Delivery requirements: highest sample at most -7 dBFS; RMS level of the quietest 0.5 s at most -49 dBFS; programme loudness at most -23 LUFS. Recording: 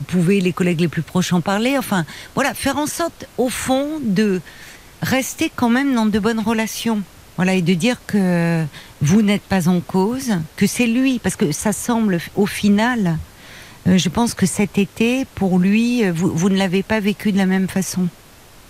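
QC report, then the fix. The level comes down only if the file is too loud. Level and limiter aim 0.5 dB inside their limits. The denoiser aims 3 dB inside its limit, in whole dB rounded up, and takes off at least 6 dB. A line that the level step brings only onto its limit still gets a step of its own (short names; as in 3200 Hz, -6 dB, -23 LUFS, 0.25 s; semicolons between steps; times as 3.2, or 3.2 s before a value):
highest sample -5.5 dBFS: fail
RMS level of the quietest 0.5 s -44 dBFS: fail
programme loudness -18.5 LUFS: fail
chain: denoiser 6 dB, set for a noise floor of -44 dBFS; gain -5 dB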